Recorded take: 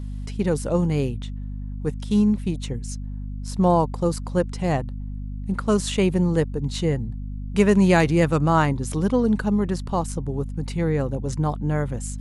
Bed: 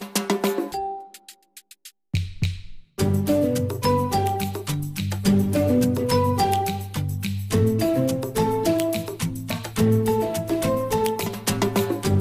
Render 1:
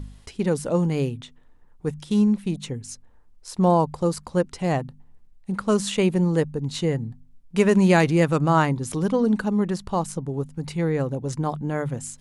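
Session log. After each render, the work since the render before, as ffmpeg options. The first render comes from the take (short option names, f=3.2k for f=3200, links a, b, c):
-af "bandreject=f=50:t=h:w=4,bandreject=f=100:t=h:w=4,bandreject=f=150:t=h:w=4,bandreject=f=200:t=h:w=4,bandreject=f=250:t=h:w=4"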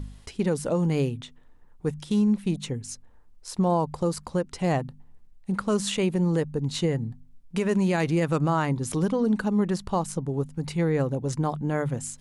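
-af "alimiter=limit=-15.5dB:level=0:latency=1:release=152"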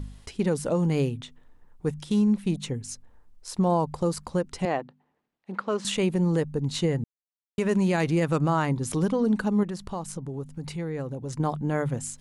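-filter_complex "[0:a]asettb=1/sr,asplit=3[a][b][c];[a]atrim=end=4.654[d];[b]atrim=start=4.65:end=5.85,asetpts=PTS-STARTPTS,afade=t=in:d=0.004:c=qsin,afade=t=out:st=1.196:d=0.004:c=qsin,highpass=330,lowpass=3.4k[e];[c]atrim=start=5.846[f];[d][e]acrossfade=d=0.004:c1=hsin:c2=qsin[g];[g][f]acrossfade=d=0.004:c1=qsin:c2=hsin,asettb=1/sr,asplit=3[h][i][j];[h]atrim=end=9.634[k];[i]atrim=start=9.63:end=11.4,asetpts=PTS-STARTPTS,afade=t=in:d=0.004:c=qsin,afade=t=out:st=1.766:d=0.004:c=qsin,acompressor=threshold=-34dB:ratio=2:attack=3.2:release=140:knee=1:detection=peak[l];[j]atrim=start=11.396[m];[k][l]acrossfade=d=0.004:c1=hsin:c2=qsin[n];[n][m]acrossfade=d=0.004:c1=qsin:c2=hsin,asplit=3[o][p][q];[o]atrim=end=7.04,asetpts=PTS-STARTPTS,afade=t=out:st=7.036:d=0.004:c=hsin[r];[p]atrim=start=7.04:end=7.58,asetpts=PTS-STARTPTS,volume=0[s];[q]atrim=start=7.58,asetpts=PTS-STARTPTS,afade=t=in:d=0.004:c=hsin[t];[r][s][t]concat=n=3:v=0:a=1"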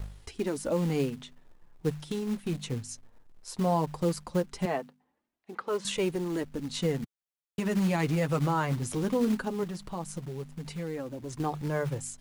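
-filter_complex "[0:a]flanger=delay=1.8:depth=7.2:regen=-25:speed=0.17:shape=triangular,acrossover=split=440|1900[a][b][c];[a]acrusher=bits=4:mode=log:mix=0:aa=0.000001[d];[d][b][c]amix=inputs=3:normalize=0"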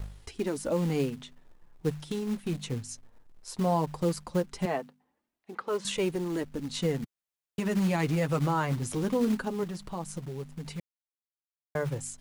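-filter_complex "[0:a]asplit=3[a][b][c];[a]atrim=end=10.8,asetpts=PTS-STARTPTS,afade=t=out:st=10.796:d=0.004:c=hsin[d];[b]atrim=start=10.8:end=11.75,asetpts=PTS-STARTPTS,volume=0[e];[c]atrim=start=11.75,asetpts=PTS-STARTPTS,afade=t=in:d=0.004:c=hsin[f];[d][e][f]concat=n=3:v=0:a=1"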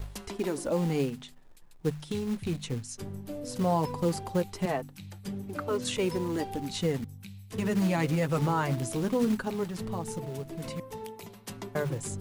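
-filter_complex "[1:a]volume=-18.5dB[a];[0:a][a]amix=inputs=2:normalize=0"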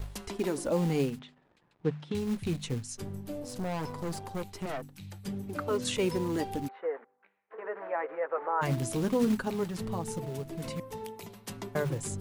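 -filter_complex "[0:a]asettb=1/sr,asplit=3[a][b][c];[a]atrim=end=1.194[d];[b]atrim=start=1.19:end=2.15,asetpts=PTS-STARTPTS,afade=t=in:d=0.004:c=qsin,afade=t=out:st=0.956:d=0.004:c=qsin,highpass=110,lowpass=2.9k[e];[c]atrim=start=2.146[f];[d][e]acrossfade=d=0.004:c1=hsin:c2=qsin[g];[g][f]acrossfade=d=0.004:c1=qsin:c2=hsin,asettb=1/sr,asplit=3[h][i][j];[h]atrim=end=3.424[k];[i]atrim=start=3.42:end=5.01,asetpts=PTS-STARTPTS,afade=t=in:d=0.004:c=qsin,afade=t=out:st=1.586:d=0.004:c=qsin,aeval=exprs='(tanh(35.5*val(0)+0.6)-tanh(0.6))/35.5':c=same[l];[j]atrim=start=5.006[m];[k][l]acrossfade=d=0.004:c1=hsin:c2=qsin[n];[n][m]acrossfade=d=0.004:c1=qsin:c2=hsin,asplit=3[o][p][q];[o]afade=t=out:st=6.67:d=0.02[r];[p]asuperpass=centerf=900:order=8:qfactor=0.65,afade=t=in:st=6.67:d=0.02,afade=t=out:st=8.61:d=0.02[s];[q]afade=t=in:st=8.61:d=0.02[t];[r][s][t]amix=inputs=3:normalize=0"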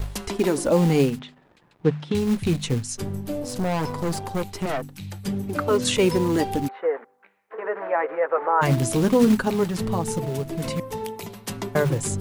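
-af "volume=9.5dB"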